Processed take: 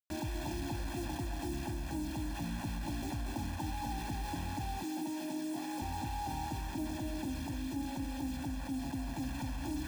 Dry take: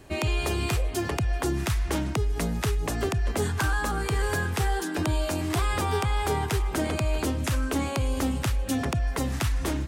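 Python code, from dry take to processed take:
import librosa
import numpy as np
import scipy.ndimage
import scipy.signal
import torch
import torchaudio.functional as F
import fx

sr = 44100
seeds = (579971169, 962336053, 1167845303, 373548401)

y = fx.formant_cascade(x, sr, vowel='u')
y = y + 10.0 ** (-23.5 / 20.0) * np.pad(y, (int(121 * sr / 1000.0), 0))[:len(y)]
y = fx.quant_dither(y, sr, seeds[0], bits=8, dither='none')
y = fx.low_shelf(y, sr, hz=240.0, db=-5.0)
y = y + 0.99 * np.pad(y, (int(1.2 * sr / 1000.0), 0))[:len(y)]
y = y + 10.0 ** (-4.5 / 20.0) * np.pad(y, (int(235 * sr / 1000.0), 0))[:len(y)]
y = fx.rider(y, sr, range_db=10, speed_s=0.5)
y = fx.highpass(y, sr, hz=190.0, slope=24, at=(4.83, 5.82))
y = fx.env_flatten(y, sr, amount_pct=50)
y = y * librosa.db_to_amplitude(-4.0)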